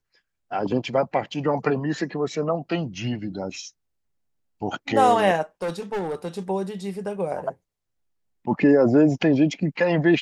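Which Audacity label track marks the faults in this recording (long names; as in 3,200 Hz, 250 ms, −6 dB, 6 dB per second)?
5.620000	6.380000	clipping −23.5 dBFS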